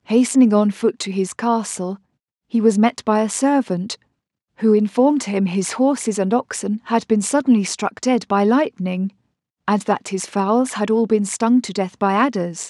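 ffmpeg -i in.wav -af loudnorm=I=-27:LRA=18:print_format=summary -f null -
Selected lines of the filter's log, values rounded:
Input Integrated:    -18.8 LUFS
Input True Peak:      -3.5 dBTP
Input LRA:             1.1 LU
Input Threshold:     -29.0 LUFS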